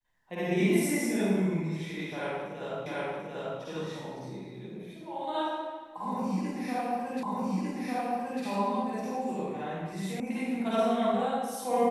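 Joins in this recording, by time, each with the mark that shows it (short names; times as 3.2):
2.86 repeat of the last 0.74 s
7.23 repeat of the last 1.2 s
10.2 sound cut off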